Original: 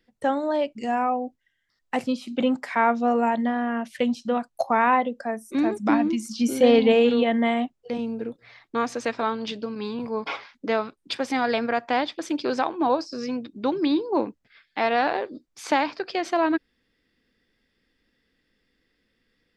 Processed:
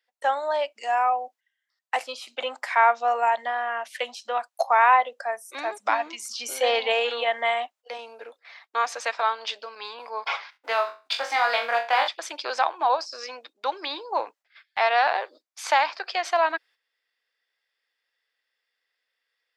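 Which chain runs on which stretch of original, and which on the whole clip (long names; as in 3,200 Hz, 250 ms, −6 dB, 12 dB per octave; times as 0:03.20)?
0:10.50–0:12.08: mu-law and A-law mismatch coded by A + high-shelf EQ 9,900 Hz −9.5 dB + flutter between parallel walls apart 3.7 metres, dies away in 0.31 s
whole clip: high-pass filter 650 Hz 24 dB per octave; noise gate −54 dBFS, range −9 dB; level +3.5 dB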